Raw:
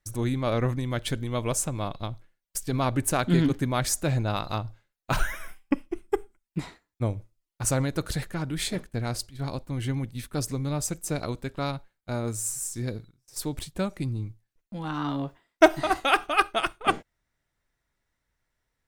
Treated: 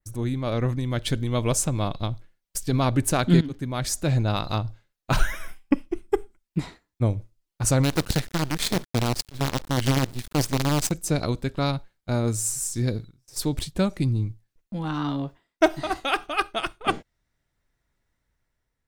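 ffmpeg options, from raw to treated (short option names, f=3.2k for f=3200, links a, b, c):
-filter_complex "[0:a]asplit=3[a][b][c];[a]afade=t=out:st=7.83:d=0.02[d];[b]acrusher=bits=5:dc=4:mix=0:aa=0.000001,afade=t=in:st=7.83:d=0.02,afade=t=out:st=10.9:d=0.02[e];[c]afade=t=in:st=10.9:d=0.02[f];[d][e][f]amix=inputs=3:normalize=0,asplit=2[g][h];[g]atrim=end=3.41,asetpts=PTS-STARTPTS,afade=t=out:st=3.406:d=0.004:c=hsin:silence=0.141254[i];[h]atrim=start=3.41,asetpts=PTS-STARTPTS,afade=t=in:d=1.13:c=qsin:silence=0.141254[j];[i][j]concat=n=2:v=0:a=1,lowshelf=f=480:g=5.5,dynaudnorm=f=380:g=5:m=6.5dB,adynamicequalizer=threshold=0.00794:dfrequency=4400:dqfactor=0.9:tfrequency=4400:tqfactor=0.9:attack=5:release=100:ratio=0.375:range=2.5:mode=boostabove:tftype=bell,volume=-4.5dB"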